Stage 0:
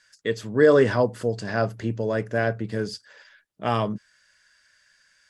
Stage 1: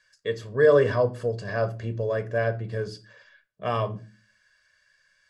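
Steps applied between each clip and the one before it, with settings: treble shelf 5.3 kHz -7.5 dB; reverberation RT60 0.35 s, pre-delay 7 ms, DRR 10.5 dB; trim -5 dB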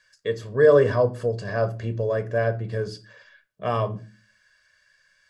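dynamic bell 2.8 kHz, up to -4 dB, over -41 dBFS, Q 0.72; trim +2.5 dB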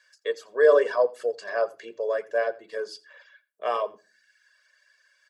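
delay 85 ms -11.5 dB; reverb removal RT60 0.61 s; high-pass 420 Hz 24 dB/octave

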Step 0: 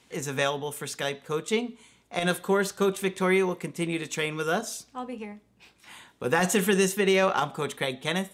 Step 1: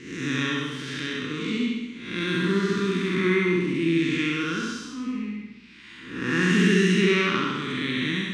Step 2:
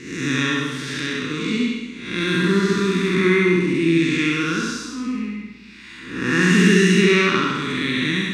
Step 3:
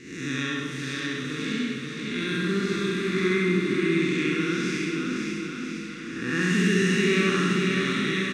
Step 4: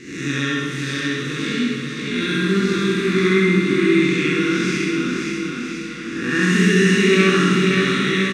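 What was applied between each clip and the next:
spectral blur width 272 ms; FFT filter 150 Hz 0 dB, 300 Hz +11 dB, 690 Hz -27 dB, 1.1 kHz -1 dB, 1.9 kHz +6 dB, 5.1 kHz +2 dB, 13 kHz -23 dB; flutter echo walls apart 11.4 m, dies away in 0.84 s; trim +3 dB
treble shelf 6 kHz +6 dB; band-stop 3.1 kHz, Q 9.6; reverberation RT60 1.2 s, pre-delay 50 ms, DRR 14 dB; trim +5 dB
band-stop 970 Hz, Q 5.7; bouncing-ball echo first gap 530 ms, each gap 0.9×, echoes 5; trim -8 dB
doubling 21 ms -5 dB; trim +5.5 dB

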